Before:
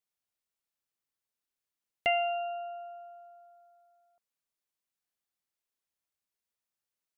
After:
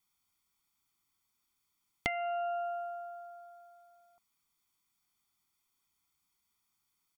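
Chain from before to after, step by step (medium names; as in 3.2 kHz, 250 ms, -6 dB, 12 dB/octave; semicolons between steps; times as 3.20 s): band-stop 2.2 kHz, Q 29; comb 0.9 ms, depth 96%; compression 12:1, threshold -38 dBFS, peak gain reduction 15 dB; trim +7 dB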